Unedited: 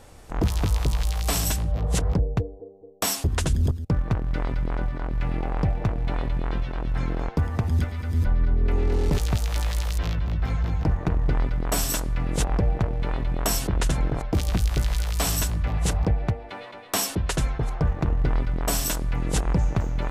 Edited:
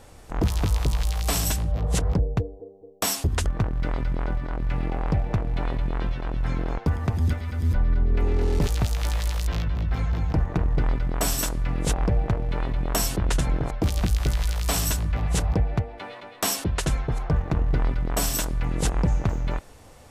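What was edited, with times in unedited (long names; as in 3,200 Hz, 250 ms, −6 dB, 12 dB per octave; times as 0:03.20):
0:03.46–0:03.97: remove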